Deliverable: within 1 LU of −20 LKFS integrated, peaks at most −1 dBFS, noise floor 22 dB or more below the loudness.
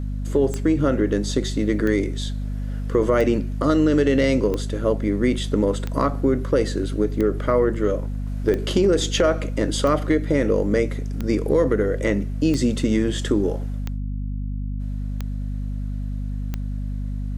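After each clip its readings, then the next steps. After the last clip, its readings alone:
number of clicks 13; mains hum 50 Hz; hum harmonics up to 250 Hz; level of the hum −24 dBFS; integrated loudness −22.5 LKFS; sample peak −6.5 dBFS; target loudness −20.0 LKFS
→ click removal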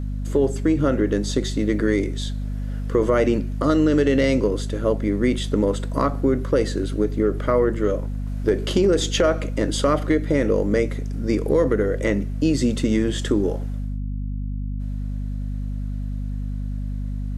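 number of clicks 0; mains hum 50 Hz; hum harmonics up to 250 Hz; level of the hum −24 dBFS
→ hum removal 50 Hz, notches 5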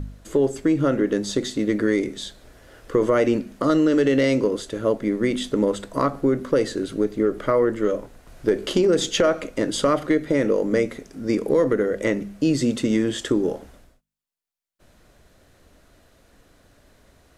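mains hum none found; integrated loudness −22.0 LKFS; sample peak −7.5 dBFS; target loudness −20.0 LKFS
→ level +2 dB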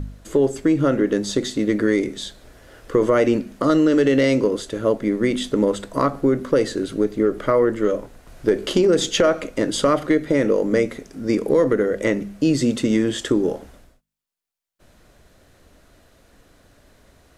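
integrated loudness −20.0 LKFS; sample peak −5.5 dBFS; background noise floor −56 dBFS

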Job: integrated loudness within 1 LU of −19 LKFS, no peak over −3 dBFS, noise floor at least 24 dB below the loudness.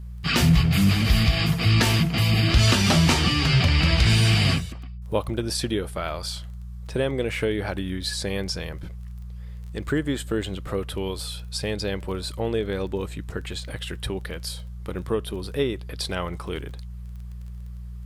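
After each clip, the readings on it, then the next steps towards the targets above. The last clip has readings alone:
crackle rate 20 per second; mains hum 60 Hz; hum harmonics up to 180 Hz; level of the hum −33 dBFS; integrated loudness −23.5 LKFS; sample peak −7.0 dBFS; target loudness −19.0 LKFS
→ click removal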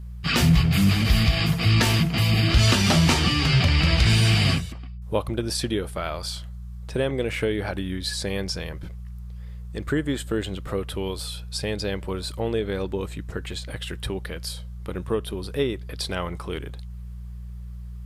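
crackle rate 0 per second; mains hum 60 Hz; hum harmonics up to 180 Hz; level of the hum −33 dBFS
→ hum removal 60 Hz, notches 3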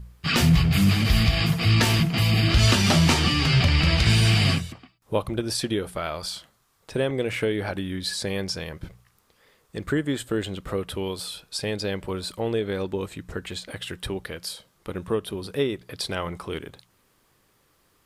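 mains hum none found; integrated loudness −24.0 LKFS; sample peak −7.0 dBFS; target loudness −19.0 LKFS
→ level +5 dB
brickwall limiter −3 dBFS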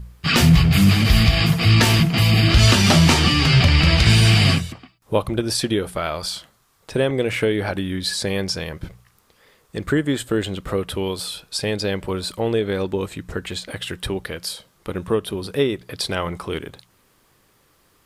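integrated loudness −19.0 LKFS; sample peak −3.0 dBFS; background noise floor −60 dBFS

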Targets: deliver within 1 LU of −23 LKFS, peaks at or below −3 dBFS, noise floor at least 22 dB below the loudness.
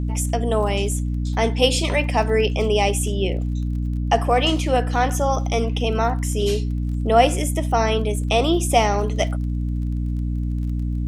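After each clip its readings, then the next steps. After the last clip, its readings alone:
crackle rate 27 per second; mains hum 60 Hz; hum harmonics up to 300 Hz; level of the hum −21 dBFS; integrated loudness −21.0 LKFS; sample peak −1.5 dBFS; target loudness −23.0 LKFS
→ click removal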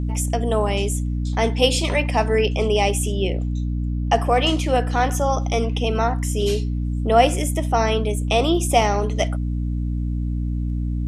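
crackle rate 0.18 per second; mains hum 60 Hz; hum harmonics up to 300 Hz; level of the hum −21 dBFS
→ hum removal 60 Hz, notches 5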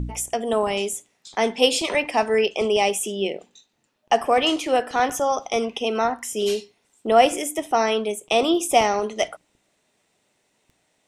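mains hum none found; integrated loudness −22.0 LKFS; sample peak −2.5 dBFS; target loudness −23.0 LKFS
→ level −1 dB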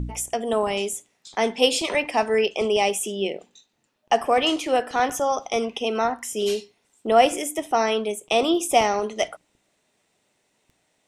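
integrated loudness −23.0 LKFS; sample peak −3.5 dBFS; background noise floor −70 dBFS

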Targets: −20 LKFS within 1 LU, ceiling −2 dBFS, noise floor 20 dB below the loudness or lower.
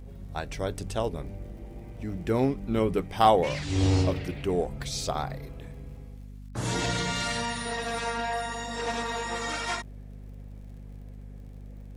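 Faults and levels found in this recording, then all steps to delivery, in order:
crackle rate 49 per second; mains hum 50 Hz; hum harmonics up to 250 Hz; level of the hum −41 dBFS; integrated loudness −29.0 LKFS; sample peak −7.0 dBFS; target loudness −20.0 LKFS
→ click removal
mains-hum notches 50/100/150/200/250 Hz
level +9 dB
brickwall limiter −2 dBFS

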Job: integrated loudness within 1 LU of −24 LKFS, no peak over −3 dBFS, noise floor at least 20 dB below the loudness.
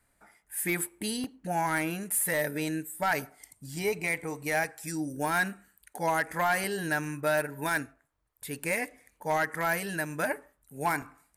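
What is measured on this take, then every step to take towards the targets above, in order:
share of clipped samples 0.5%; peaks flattened at −20.0 dBFS; number of dropouts 4; longest dropout 2.9 ms; integrated loudness −30.5 LKFS; sample peak −20.0 dBFS; target loudness −24.0 LKFS
→ clipped peaks rebuilt −20 dBFS
repair the gap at 0:01.24/0:04.64/0:06.64/0:11.02, 2.9 ms
level +6.5 dB

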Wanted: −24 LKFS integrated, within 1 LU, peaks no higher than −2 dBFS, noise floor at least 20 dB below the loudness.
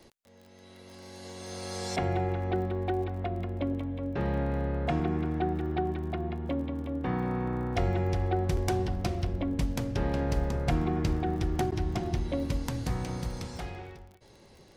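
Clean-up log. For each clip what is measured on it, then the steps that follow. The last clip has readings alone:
crackle rate 31 per second; integrated loudness −31.5 LKFS; sample peak −16.5 dBFS; target loudness −24.0 LKFS
→ click removal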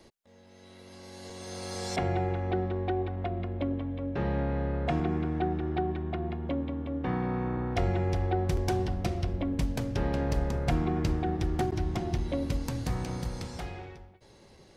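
crackle rate 0.14 per second; integrated loudness −31.5 LKFS; sample peak −16.5 dBFS; target loudness −24.0 LKFS
→ level +7.5 dB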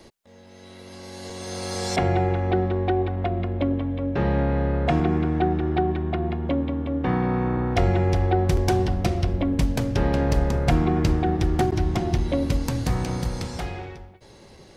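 integrated loudness −24.0 LKFS; sample peak −9.0 dBFS; background noise floor −49 dBFS

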